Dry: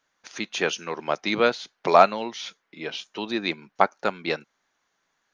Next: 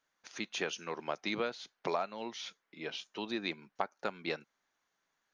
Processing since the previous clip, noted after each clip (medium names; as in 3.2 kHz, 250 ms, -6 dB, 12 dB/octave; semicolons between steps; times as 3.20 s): compression 10:1, threshold -22 dBFS, peak gain reduction 13.5 dB; trim -8 dB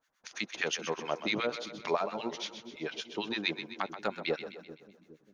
harmonic tremolo 8.8 Hz, depth 100%, crossover 1.1 kHz; on a send: two-band feedback delay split 350 Hz, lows 406 ms, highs 128 ms, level -10 dB; on the sum: trim +8 dB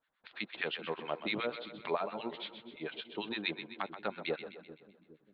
steep low-pass 4.1 kHz 72 dB/octave; trim -3.5 dB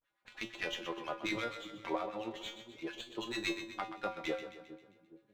feedback comb 110 Hz, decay 0.27 s, harmonics odd, mix 90%; vibrato 0.39 Hz 69 cents; sliding maximum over 3 samples; trim +10.5 dB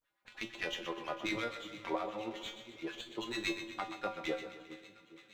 feedback echo behind a high-pass 462 ms, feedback 66%, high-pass 1.7 kHz, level -15 dB; on a send at -17 dB: reverberation RT60 1.7 s, pre-delay 12 ms